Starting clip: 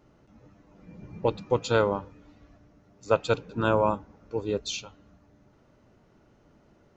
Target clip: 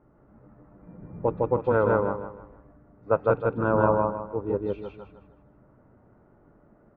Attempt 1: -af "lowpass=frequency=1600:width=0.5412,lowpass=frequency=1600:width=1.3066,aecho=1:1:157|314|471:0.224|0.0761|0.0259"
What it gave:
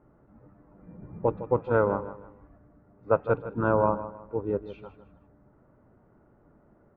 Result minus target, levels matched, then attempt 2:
echo-to-direct −12 dB
-af "lowpass=frequency=1600:width=0.5412,lowpass=frequency=1600:width=1.3066,aecho=1:1:157|314|471|628|785:0.891|0.303|0.103|0.035|0.0119"

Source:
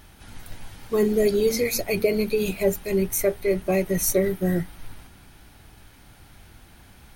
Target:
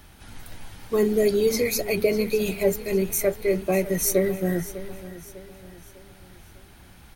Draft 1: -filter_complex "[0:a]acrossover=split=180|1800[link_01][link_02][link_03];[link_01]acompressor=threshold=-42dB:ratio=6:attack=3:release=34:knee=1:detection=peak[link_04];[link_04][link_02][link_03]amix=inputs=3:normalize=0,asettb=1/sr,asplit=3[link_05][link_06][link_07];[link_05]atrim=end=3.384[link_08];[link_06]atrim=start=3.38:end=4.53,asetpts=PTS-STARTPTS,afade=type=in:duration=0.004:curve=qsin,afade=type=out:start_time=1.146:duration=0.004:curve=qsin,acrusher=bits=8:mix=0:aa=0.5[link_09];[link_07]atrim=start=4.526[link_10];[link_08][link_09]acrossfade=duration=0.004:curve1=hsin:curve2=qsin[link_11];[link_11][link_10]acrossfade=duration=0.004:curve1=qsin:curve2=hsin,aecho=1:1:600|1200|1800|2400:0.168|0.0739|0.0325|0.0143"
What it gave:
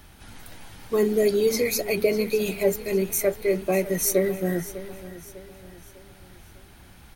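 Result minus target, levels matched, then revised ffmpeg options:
downward compressor: peak gain reduction +7 dB
-filter_complex "[0:a]acrossover=split=180|1800[link_01][link_02][link_03];[link_01]acompressor=threshold=-33.5dB:ratio=6:attack=3:release=34:knee=1:detection=peak[link_04];[link_04][link_02][link_03]amix=inputs=3:normalize=0,asettb=1/sr,asplit=3[link_05][link_06][link_07];[link_05]atrim=end=3.384[link_08];[link_06]atrim=start=3.38:end=4.53,asetpts=PTS-STARTPTS,afade=type=in:duration=0.004:curve=qsin,afade=type=out:start_time=1.146:duration=0.004:curve=qsin,acrusher=bits=8:mix=0:aa=0.5[link_09];[link_07]atrim=start=4.526[link_10];[link_08][link_09]acrossfade=duration=0.004:curve1=hsin:curve2=qsin[link_11];[link_11][link_10]acrossfade=duration=0.004:curve1=qsin:curve2=hsin,aecho=1:1:600|1200|1800|2400:0.168|0.0739|0.0325|0.0143"

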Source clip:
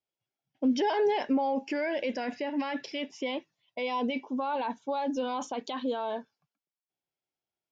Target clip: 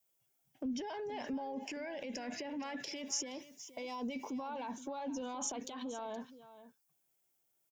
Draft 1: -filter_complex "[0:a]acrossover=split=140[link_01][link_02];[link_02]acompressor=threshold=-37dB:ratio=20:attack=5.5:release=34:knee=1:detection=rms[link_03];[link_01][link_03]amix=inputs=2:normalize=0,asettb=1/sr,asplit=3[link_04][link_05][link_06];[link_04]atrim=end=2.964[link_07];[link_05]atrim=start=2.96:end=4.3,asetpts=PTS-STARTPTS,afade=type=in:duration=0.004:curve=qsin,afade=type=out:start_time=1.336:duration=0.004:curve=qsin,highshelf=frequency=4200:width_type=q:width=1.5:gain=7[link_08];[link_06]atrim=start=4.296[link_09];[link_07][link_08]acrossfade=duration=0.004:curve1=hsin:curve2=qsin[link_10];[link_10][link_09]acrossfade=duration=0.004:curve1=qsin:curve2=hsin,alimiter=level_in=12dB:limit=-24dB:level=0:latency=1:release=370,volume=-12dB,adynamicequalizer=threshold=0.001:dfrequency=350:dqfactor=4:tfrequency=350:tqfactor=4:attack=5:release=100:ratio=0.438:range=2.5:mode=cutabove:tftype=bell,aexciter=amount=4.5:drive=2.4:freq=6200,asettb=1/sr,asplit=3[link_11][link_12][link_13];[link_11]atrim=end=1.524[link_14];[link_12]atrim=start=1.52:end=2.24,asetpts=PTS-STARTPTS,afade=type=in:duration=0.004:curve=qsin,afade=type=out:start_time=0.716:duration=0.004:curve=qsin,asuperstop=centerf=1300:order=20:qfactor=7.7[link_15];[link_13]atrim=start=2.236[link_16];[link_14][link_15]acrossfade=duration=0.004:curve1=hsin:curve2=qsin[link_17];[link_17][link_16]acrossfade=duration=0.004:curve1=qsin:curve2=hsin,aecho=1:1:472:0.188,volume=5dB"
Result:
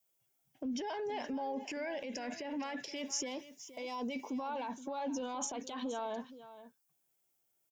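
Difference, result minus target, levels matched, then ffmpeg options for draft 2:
downward compressor: peak gain reduction −7 dB
-filter_complex "[0:a]acrossover=split=140[link_01][link_02];[link_02]acompressor=threshold=-44.5dB:ratio=20:attack=5.5:release=34:knee=1:detection=rms[link_03];[link_01][link_03]amix=inputs=2:normalize=0,asettb=1/sr,asplit=3[link_04][link_05][link_06];[link_04]atrim=end=2.964[link_07];[link_05]atrim=start=2.96:end=4.3,asetpts=PTS-STARTPTS,afade=type=in:duration=0.004:curve=qsin,afade=type=out:start_time=1.336:duration=0.004:curve=qsin,highshelf=frequency=4200:width_type=q:width=1.5:gain=7[link_08];[link_06]atrim=start=4.296[link_09];[link_07][link_08]acrossfade=duration=0.004:curve1=hsin:curve2=qsin[link_10];[link_10][link_09]acrossfade=duration=0.004:curve1=qsin:curve2=hsin,alimiter=level_in=12dB:limit=-24dB:level=0:latency=1:release=370,volume=-12dB,adynamicequalizer=threshold=0.001:dfrequency=350:dqfactor=4:tfrequency=350:tqfactor=4:attack=5:release=100:ratio=0.438:range=2.5:mode=cutabove:tftype=bell,aexciter=amount=4.5:drive=2.4:freq=6200,asettb=1/sr,asplit=3[link_11][link_12][link_13];[link_11]atrim=end=1.524[link_14];[link_12]atrim=start=1.52:end=2.24,asetpts=PTS-STARTPTS,afade=type=in:duration=0.004:curve=qsin,afade=type=out:start_time=0.716:duration=0.004:curve=qsin,asuperstop=centerf=1300:order=20:qfactor=7.7[link_15];[link_13]atrim=start=2.236[link_16];[link_14][link_15]acrossfade=duration=0.004:curve1=hsin:curve2=qsin[link_17];[link_17][link_16]acrossfade=duration=0.004:curve1=qsin:curve2=hsin,aecho=1:1:472:0.188,volume=5dB"

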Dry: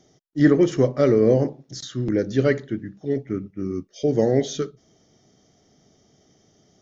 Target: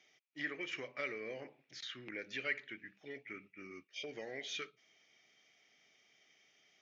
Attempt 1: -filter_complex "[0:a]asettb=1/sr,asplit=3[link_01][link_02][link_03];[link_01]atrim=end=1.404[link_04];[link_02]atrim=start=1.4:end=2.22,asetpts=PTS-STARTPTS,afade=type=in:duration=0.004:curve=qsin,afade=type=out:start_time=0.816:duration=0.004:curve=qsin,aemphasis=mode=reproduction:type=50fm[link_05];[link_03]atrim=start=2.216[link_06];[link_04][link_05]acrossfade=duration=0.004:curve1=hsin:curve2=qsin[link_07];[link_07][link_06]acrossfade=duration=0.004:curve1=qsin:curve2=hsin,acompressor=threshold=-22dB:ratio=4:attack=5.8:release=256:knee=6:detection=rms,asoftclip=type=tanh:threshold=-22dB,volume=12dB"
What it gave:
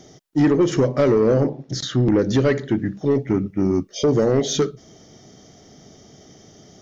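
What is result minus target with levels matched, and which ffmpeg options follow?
2,000 Hz band −17.0 dB
-filter_complex "[0:a]asettb=1/sr,asplit=3[link_01][link_02][link_03];[link_01]atrim=end=1.404[link_04];[link_02]atrim=start=1.4:end=2.22,asetpts=PTS-STARTPTS,afade=type=in:duration=0.004:curve=qsin,afade=type=out:start_time=0.816:duration=0.004:curve=qsin,aemphasis=mode=reproduction:type=50fm[link_05];[link_03]atrim=start=2.216[link_06];[link_04][link_05]acrossfade=duration=0.004:curve1=hsin:curve2=qsin[link_07];[link_07][link_06]acrossfade=duration=0.004:curve1=qsin:curve2=hsin,acompressor=threshold=-22dB:ratio=4:attack=5.8:release=256:knee=6:detection=rms,bandpass=frequency=2400:width_type=q:width=6.9:csg=0,asoftclip=type=tanh:threshold=-22dB,volume=12dB"

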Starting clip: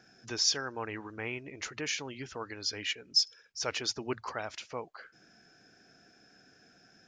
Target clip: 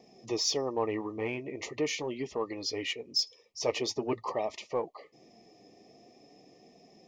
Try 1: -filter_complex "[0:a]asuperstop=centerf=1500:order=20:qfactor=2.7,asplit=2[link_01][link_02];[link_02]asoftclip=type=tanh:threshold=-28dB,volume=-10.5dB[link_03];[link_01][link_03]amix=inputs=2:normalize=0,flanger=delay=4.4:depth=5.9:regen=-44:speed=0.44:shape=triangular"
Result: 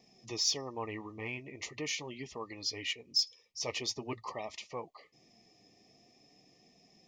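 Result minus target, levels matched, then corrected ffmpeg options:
500 Hz band −7.5 dB
-filter_complex "[0:a]asuperstop=centerf=1500:order=20:qfactor=2.7,equalizer=frequency=470:width_type=o:width=2.4:gain=11.5,asplit=2[link_01][link_02];[link_02]asoftclip=type=tanh:threshold=-28dB,volume=-10.5dB[link_03];[link_01][link_03]amix=inputs=2:normalize=0,flanger=delay=4.4:depth=5.9:regen=-44:speed=0.44:shape=triangular"

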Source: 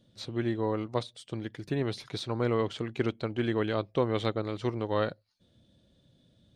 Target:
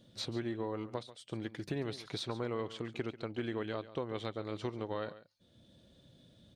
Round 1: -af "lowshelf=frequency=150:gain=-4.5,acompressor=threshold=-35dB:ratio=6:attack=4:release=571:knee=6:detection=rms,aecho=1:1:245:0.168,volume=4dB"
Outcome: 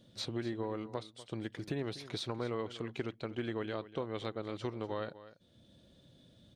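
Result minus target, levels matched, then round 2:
echo 105 ms late
-af "lowshelf=frequency=150:gain=-4.5,acompressor=threshold=-35dB:ratio=6:attack=4:release=571:knee=6:detection=rms,aecho=1:1:140:0.168,volume=4dB"

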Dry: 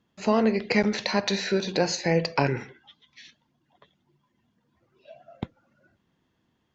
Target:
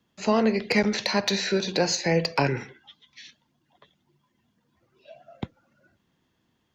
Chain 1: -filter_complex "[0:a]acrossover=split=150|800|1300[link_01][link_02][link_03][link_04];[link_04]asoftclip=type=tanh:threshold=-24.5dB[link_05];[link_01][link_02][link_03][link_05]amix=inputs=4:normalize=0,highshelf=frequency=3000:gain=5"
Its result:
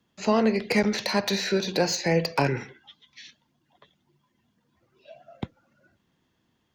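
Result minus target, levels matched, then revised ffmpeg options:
soft clipping: distortion +12 dB
-filter_complex "[0:a]acrossover=split=150|800|1300[link_01][link_02][link_03][link_04];[link_04]asoftclip=type=tanh:threshold=-14.5dB[link_05];[link_01][link_02][link_03][link_05]amix=inputs=4:normalize=0,highshelf=frequency=3000:gain=5"

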